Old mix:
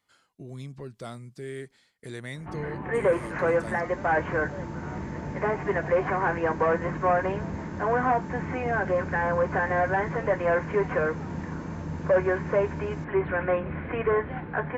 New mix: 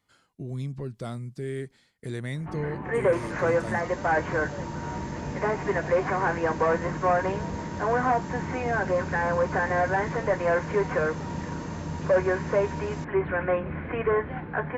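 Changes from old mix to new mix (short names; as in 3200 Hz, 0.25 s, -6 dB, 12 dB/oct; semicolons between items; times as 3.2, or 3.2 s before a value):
speech: add low shelf 330 Hz +8.5 dB; second sound +9.0 dB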